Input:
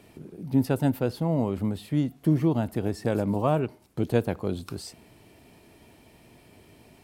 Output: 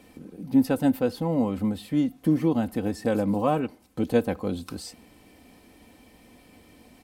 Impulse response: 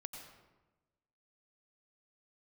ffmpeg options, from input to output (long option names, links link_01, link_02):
-af "aecho=1:1:3.9:0.62"